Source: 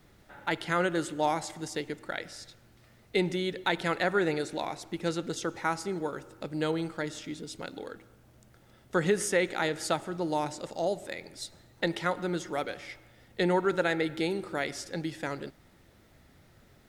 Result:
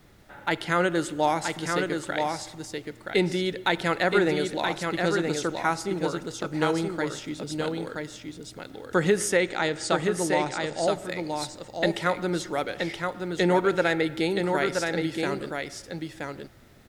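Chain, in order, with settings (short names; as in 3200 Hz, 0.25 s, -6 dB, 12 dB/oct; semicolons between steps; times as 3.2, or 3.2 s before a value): 9.37–10.85 elliptic low-pass 8900 Hz, stop band 40 dB; on a send: echo 0.974 s -4.5 dB; on the sum: gain +4 dB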